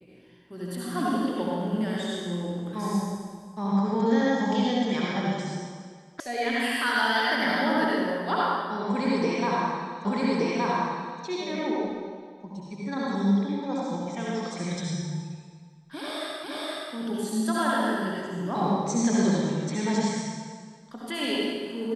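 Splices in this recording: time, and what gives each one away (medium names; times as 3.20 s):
6.20 s: sound stops dead
10.05 s: repeat of the last 1.17 s
16.44 s: repeat of the last 0.47 s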